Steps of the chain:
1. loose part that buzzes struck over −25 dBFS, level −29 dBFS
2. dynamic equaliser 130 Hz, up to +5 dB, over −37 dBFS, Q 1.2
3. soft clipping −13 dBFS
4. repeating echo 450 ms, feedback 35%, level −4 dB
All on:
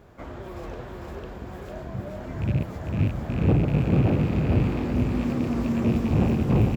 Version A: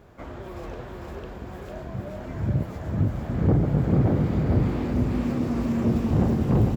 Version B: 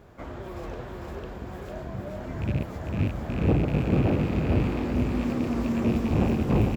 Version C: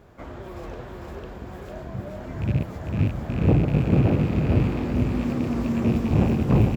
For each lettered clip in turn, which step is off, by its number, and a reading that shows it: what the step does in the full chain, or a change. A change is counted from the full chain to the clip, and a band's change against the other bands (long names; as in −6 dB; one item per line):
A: 1, 2 kHz band −3.0 dB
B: 2, change in momentary loudness spread −2 LU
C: 3, distortion level −18 dB